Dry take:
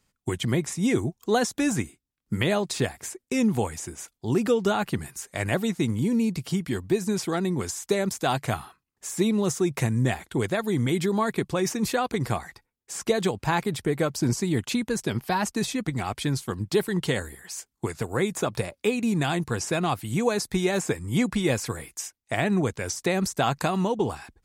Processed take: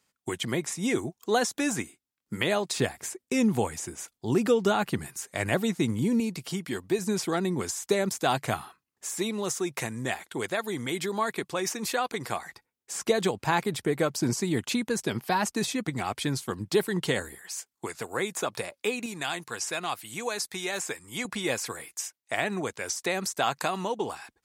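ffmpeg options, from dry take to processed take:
ffmpeg -i in.wav -af "asetnsamples=nb_out_samples=441:pad=0,asendcmd='2.78 highpass f 130;6.2 highpass f 370;6.99 highpass f 180;9.15 highpass f 620;12.46 highpass f 200;17.38 highpass f 620;19.06 highpass f 1300;21.25 highpass f 630',highpass=frequency=370:poles=1" out.wav

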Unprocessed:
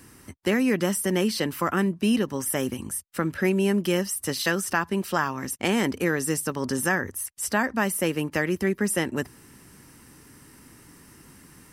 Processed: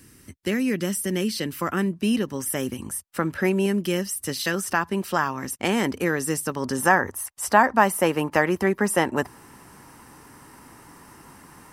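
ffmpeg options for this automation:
ffmpeg -i in.wav -af "asetnsamples=nb_out_samples=441:pad=0,asendcmd='1.61 equalizer g -2.5;2.82 equalizer g 4.5;3.66 equalizer g -4;4.54 equalizer g 2.5;6.8 equalizer g 12.5',equalizer=frequency=880:width_type=o:width=1.4:gain=-9" out.wav

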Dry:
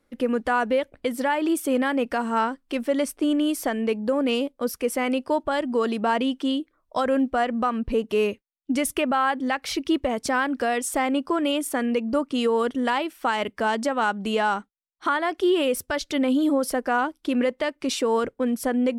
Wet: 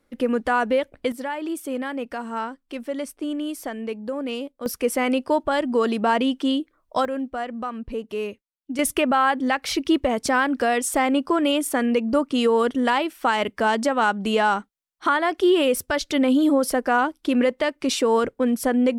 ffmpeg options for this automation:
ffmpeg -i in.wav -af "asetnsamples=nb_out_samples=441:pad=0,asendcmd='1.12 volume volume -5.5dB;4.66 volume volume 2.5dB;7.05 volume volume -6dB;8.79 volume volume 3dB',volume=1.5dB" out.wav

